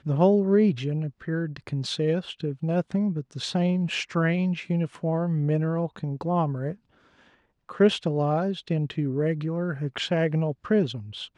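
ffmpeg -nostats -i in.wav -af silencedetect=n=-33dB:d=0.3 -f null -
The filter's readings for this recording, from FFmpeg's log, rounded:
silence_start: 6.72
silence_end: 7.69 | silence_duration: 0.97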